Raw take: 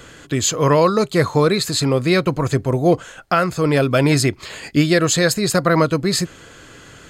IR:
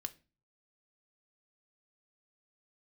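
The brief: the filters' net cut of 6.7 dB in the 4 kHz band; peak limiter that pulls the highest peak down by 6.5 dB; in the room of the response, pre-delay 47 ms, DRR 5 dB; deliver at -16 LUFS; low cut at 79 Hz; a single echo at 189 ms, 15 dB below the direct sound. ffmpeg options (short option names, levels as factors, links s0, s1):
-filter_complex "[0:a]highpass=79,equalizer=f=4000:t=o:g=-8,alimiter=limit=0.355:level=0:latency=1,aecho=1:1:189:0.178,asplit=2[s0][s1];[1:a]atrim=start_sample=2205,adelay=47[s2];[s1][s2]afir=irnorm=-1:irlink=0,volume=0.794[s3];[s0][s3]amix=inputs=2:normalize=0,volume=1.33"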